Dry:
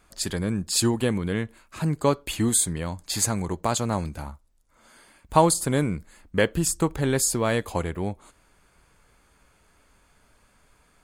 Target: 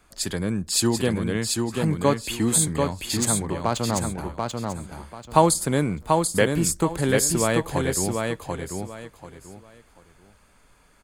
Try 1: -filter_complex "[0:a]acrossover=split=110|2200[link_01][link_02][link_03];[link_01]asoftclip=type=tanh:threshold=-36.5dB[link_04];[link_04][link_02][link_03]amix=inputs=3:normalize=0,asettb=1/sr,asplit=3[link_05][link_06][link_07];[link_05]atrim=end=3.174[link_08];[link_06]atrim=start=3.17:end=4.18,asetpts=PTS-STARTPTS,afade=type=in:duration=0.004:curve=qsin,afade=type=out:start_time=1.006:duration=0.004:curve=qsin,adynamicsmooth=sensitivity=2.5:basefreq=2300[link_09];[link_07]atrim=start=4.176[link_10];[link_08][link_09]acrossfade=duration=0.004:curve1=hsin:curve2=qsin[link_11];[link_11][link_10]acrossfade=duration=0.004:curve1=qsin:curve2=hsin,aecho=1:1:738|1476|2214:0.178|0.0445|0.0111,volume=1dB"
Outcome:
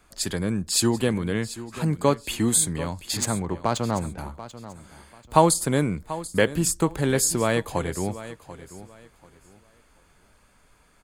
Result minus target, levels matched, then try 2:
echo-to-direct −10.5 dB
-filter_complex "[0:a]acrossover=split=110|2200[link_01][link_02][link_03];[link_01]asoftclip=type=tanh:threshold=-36.5dB[link_04];[link_04][link_02][link_03]amix=inputs=3:normalize=0,asettb=1/sr,asplit=3[link_05][link_06][link_07];[link_05]atrim=end=3.174[link_08];[link_06]atrim=start=3.17:end=4.18,asetpts=PTS-STARTPTS,afade=type=in:duration=0.004:curve=qsin,afade=type=out:start_time=1.006:duration=0.004:curve=qsin,adynamicsmooth=sensitivity=2.5:basefreq=2300[link_09];[link_07]atrim=start=4.176[link_10];[link_08][link_09]acrossfade=duration=0.004:curve1=hsin:curve2=qsin[link_11];[link_11][link_10]acrossfade=duration=0.004:curve1=qsin:curve2=hsin,aecho=1:1:738|1476|2214:0.631|0.158|0.0394,volume=1dB"

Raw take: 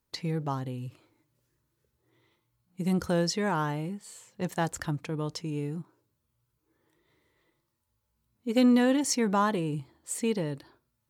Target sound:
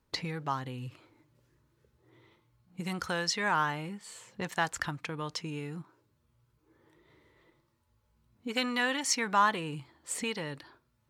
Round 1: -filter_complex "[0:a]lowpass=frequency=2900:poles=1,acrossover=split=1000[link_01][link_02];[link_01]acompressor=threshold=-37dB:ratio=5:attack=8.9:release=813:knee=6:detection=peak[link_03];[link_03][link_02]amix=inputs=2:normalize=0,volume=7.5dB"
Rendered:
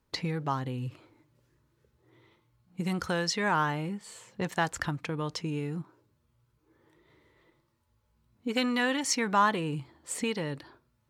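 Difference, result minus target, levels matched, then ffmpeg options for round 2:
downward compressor: peak gain reduction −5.5 dB
-filter_complex "[0:a]lowpass=frequency=2900:poles=1,acrossover=split=1000[link_01][link_02];[link_01]acompressor=threshold=-44dB:ratio=5:attack=8.9:release=813:knee=6:detection=peak[link_03];[link_03][link_02]amix=inputs=2:normalize=0,volume=7.5dB"

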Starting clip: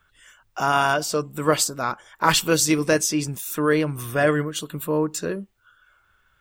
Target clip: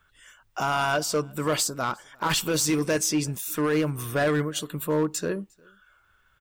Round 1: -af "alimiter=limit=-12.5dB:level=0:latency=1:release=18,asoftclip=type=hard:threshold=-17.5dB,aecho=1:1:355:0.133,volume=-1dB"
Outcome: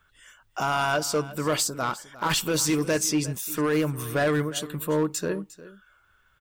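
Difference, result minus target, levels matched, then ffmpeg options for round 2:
echo-to-direct +12 dB
-af "alimiter=limit=-12.5dB:level=0:latency=1:release=18,asoftclip=type=hard:threshold=-17.5dB,aecho=1:1:355:0.0335,volume=-1dB"

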